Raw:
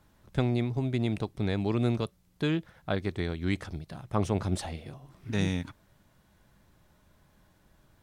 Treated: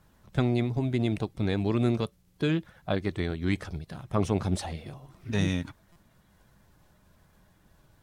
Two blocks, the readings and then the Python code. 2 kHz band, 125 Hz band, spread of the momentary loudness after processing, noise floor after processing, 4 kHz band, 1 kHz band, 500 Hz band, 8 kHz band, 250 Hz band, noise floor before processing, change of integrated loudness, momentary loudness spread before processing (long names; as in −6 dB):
+1.5 dB, +1.5 dB, 12 LU, −64 dBFS, +1.0 dB, +1.0 dB, +2.0 dB, +1.5 dB, +2.0 dB, −65 dBFS, +1.5 dB, 12 LU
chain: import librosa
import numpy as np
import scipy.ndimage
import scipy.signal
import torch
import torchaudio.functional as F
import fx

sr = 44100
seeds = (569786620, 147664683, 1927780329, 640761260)

y = fx.spec_quant(x, sr, step_db=15)
y = fx.buffer_glitch(y, sr, at_s=(5.92,), block=256, repeats=6)
y = y * librosa.db_to_amplitude(2.0)